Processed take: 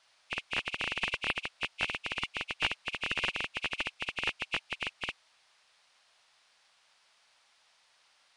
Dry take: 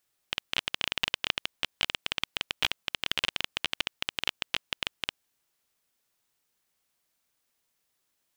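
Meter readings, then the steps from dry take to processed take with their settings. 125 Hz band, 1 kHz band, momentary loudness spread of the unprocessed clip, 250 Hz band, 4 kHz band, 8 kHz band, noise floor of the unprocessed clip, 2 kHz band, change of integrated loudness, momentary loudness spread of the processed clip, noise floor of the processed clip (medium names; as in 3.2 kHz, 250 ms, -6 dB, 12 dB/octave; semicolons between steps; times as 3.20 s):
0.0 dB, 0.0 dB, 6 LU, 0.0 dB, -6.0 dB, -6.5 dB, -78 dBFS, +0.5 dB, -2.5 dB, 6 LU, -68 dBFS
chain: knee-point frequency compression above 2.1 kHz 1.5:1; band noise 600–5300 Hz -68 dBFS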